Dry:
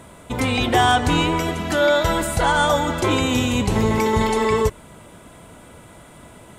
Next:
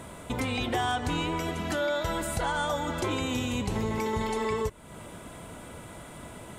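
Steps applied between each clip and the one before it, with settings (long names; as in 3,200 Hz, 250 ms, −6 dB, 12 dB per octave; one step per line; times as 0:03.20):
downward compressor 2.5 to 1, threshold −32 dBFS, peak gain reduction 13 dB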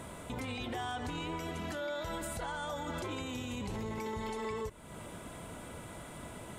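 brickwall limiter −28 dBFS, peak gain reduction 10 dB
level −2.5 dB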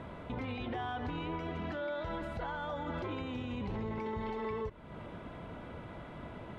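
high-frequency loss of the air 310 metres
level +1.5 dB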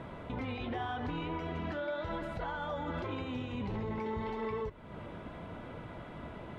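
flanger 0.86 Hz, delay 5.9 ms, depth 8.6 ms, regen −59%
level +5 dB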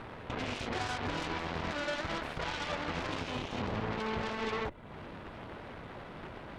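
harmonic generator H 7 −10 dB, 8 −16 dB, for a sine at −26.5 dBFS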